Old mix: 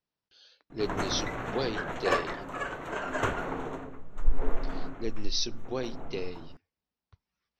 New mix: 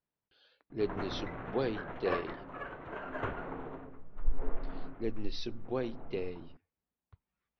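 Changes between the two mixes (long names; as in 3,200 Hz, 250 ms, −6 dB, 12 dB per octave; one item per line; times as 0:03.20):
background −6.0 dB
master: add high-frequency loss of the air 360 metres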